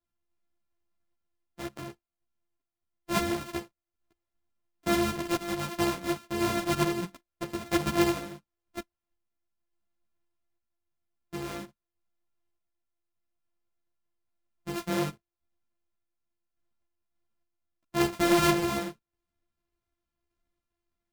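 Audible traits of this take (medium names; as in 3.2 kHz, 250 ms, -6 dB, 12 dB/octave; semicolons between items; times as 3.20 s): a buzz of ramps at a fixed pitch in blocks of 128 samples; random-step tremolo 3.5 Hz; a shimmering, thickened sound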